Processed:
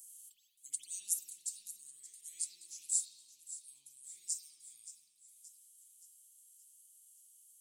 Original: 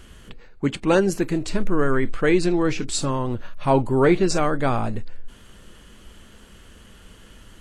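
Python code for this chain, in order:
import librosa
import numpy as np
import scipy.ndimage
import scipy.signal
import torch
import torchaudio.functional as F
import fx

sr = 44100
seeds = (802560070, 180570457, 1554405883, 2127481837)

p1 = scipy.signal.sosfilt(scipy.signal.cheby2(4, 80, 1600.0, 'highpass', fs=sr, output='sos'), x)
p2 = fx.rider(p1, sr, range_db=4, speed_s=0.5)
p3 = p2 + fx.echo_feedback(p2, sr, ms=574, feedback_pct=52, wet_db=-14.0, dry=0)
p4 = fx.rev_spring(p3, sr, rt60_s=1.1, pass_ms=(51,), chirp_ms=55, drr_db=-9.0)
y = F.gain(torch.from_numpy(p4), 6.0).numpy()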